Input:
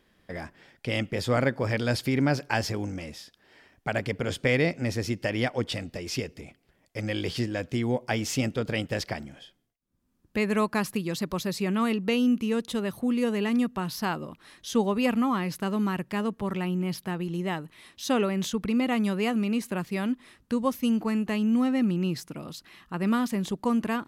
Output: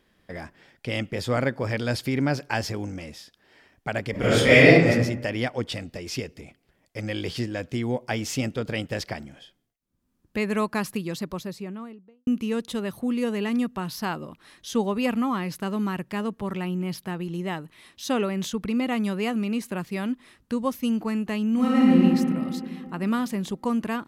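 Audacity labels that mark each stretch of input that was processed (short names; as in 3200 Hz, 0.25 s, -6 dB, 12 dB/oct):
4.110000	4.870000	reverb throw, RT60 0.83 s, DRR -12 dB
10.950000	12.270000	studio fade out
21.520000	21.970000	reverb throw, RT60 2.6 s, DRR -5.5 dB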